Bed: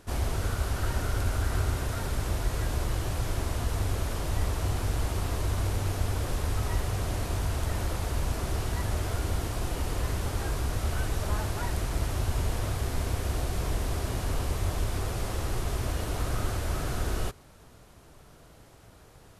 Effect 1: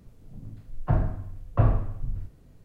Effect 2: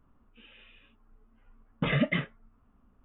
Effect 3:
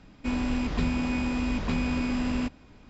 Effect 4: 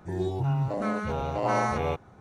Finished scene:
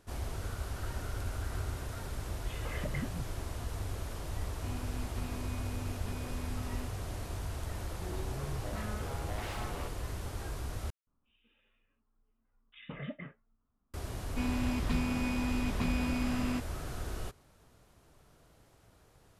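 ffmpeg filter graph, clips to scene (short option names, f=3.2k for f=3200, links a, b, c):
-filter_complex "[2:a]asplit=2[a][b];[3:a]asplit=2[c][d];[0:a]volume=-9dB[e];[a]acrossover=split=350|2600[f][g][h];[g]adelay=190[i];[f]adelay=380[j];[j][i][h]amix=inputs=3:normalize=0[k];[4:a]aeval=exprs='0.0531*(abs(mod(val(0)/0.0531+3,4)-2)-1)':c=same[l];[b]acrossover=split=2300[m][n];[m]adelay=170[o];[o][n]amix=inputs=2:normalize=0[p];[d]equalizer=f=410:t=o:w=0.77:g=-4[q];[e]asplit=2[r][s];[r]atrim=end=10.904[t];[p]atrim=end=3.04,asetpts=PTS-STARTPTS,volume=-15dB[u];[s]atrim=start=13.936[v];[k]atrim=end=3.04,asetpts=PTS-STARTPTS,volume=-10.5dB,afade=t=in:d=0.004:c=hsin,afade=t=out:st=3.036:d=0.004:c=hsin,adelay=630[w];[c]atrim=end=2.89,asetpts=PTS-STARTPTS,volume=-17dB,afade=t=in:d=0.004:c=hsin,afade=t=out:st=2.886:d=0.004:c=hsin,adelay=4390[x];[l]atrim=end=2.2,asetpts=PTS-STARTPTS,volume=-11.5dB,afade=t=in:d=0.004:c=hsin,afade=t=out:st=2.196:d=0.004:c=hsin,adelay=7930[y];[q]atrim=end=2.89,asetpts=PTS-STARTPTS,volume=-4.5dB,afade=t=in:d=0.004:c=hsin,afade=t=out:st=2.886:d=0.004:c=hsin,adelay=622692S[z];[t][u]acrossfade=d=0.004:c1=hsin:c2=hsin[aa];[aa][v]acrossfade=d=0.004:c1=hsin:c2=hsin[ab];[ab][w][x][y][z]amix=inputs=5:normalize=0"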